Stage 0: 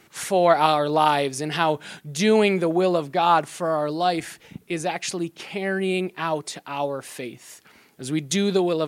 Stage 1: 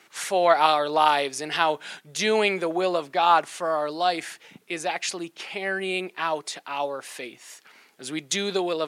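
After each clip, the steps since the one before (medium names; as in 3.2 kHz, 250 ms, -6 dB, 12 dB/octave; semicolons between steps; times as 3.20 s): frequency weighting A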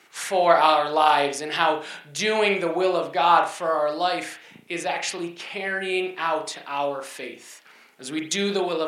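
reverberation, pre-delay 35 ms, DRR 3 dB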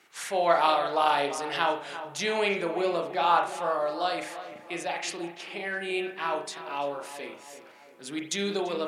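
filtered feedback delay 339 ms, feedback 52%, low-pass 2.1 kHz, level -12 dB; trim -5.5 dB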